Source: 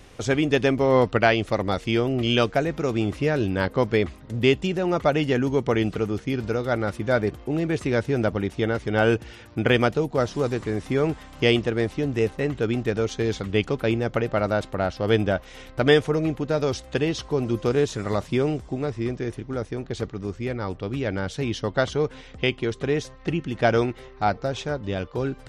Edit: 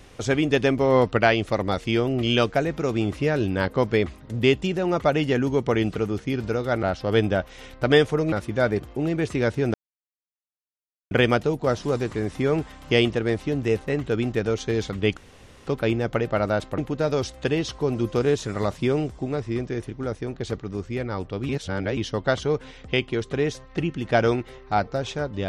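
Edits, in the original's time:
8.25–9.62 mute
13.68 insert room tone 0.50 s
14.79–16.28 move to 6.83
20.99–21.47 reverse

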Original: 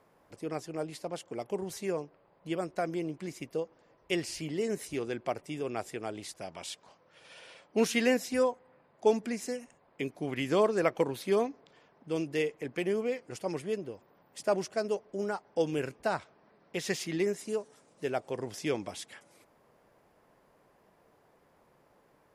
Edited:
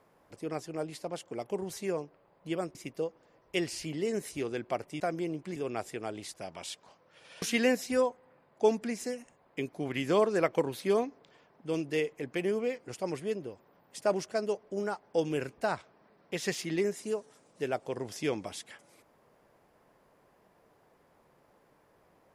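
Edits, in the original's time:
2.75–3.31 move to 5.56
7.42–7.84 cut

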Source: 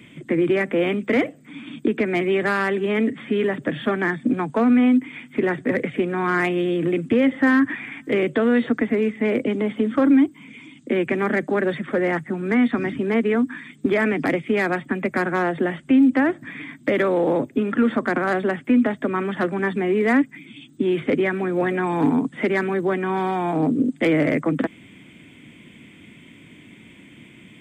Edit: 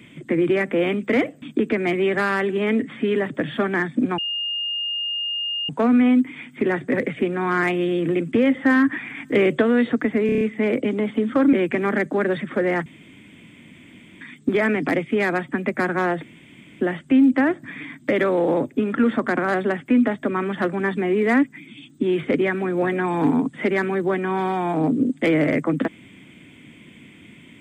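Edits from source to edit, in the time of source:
1.42–1.7 cut
4.46 add tone 2830 Hz -23 dBFS 1.51 s
7.94–8.39 gain +3 dB
9.03 stutter 0.03 s, 6 plays
10.15–10.9 cut
12.23–13.58 room tone
15.6 insert room tone 0.58 s

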